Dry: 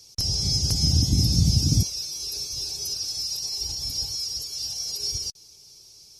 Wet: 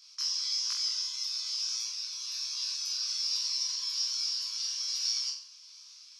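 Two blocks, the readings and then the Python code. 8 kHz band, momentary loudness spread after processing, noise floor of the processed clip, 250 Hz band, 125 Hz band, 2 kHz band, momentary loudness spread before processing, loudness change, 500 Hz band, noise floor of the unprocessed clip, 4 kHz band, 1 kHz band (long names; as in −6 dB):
−5.5 dB, 6 LU, −53 dBFS, below −40 dB, below −40 dB, +2.0 dB, 9 LU, −6.0 dB, below −40 dB, −51 dBFS, −4.0 dB, can't be measured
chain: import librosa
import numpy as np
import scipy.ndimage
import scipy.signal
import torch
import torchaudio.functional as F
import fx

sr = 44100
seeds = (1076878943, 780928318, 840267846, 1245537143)

y = scipy.signal.sosfilt(scipy.signal.butter(2, 3700.0, 'lowpass', fs=sr, output='sos'), x)
y = fx.notch(y, sr, hz=2200.0, q=22.0)
y = fx.rider(y, sr, range_db=3, speed_s=2.0)
y = fx.wow_flutter(y, sr, seeds[0], rate_hz=2.1, depth_cents=19.0)
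y = fx.brickwall_highpass(y, sr, low_hz=970.0)
y = fx.room_flutter(y, sr, wall_m=7.7, rt60_s=0.48)
y = fx.detune_double(y, sr, cents=41)
y = F.gain(torch.from_numpy(y), 4.5).numpy()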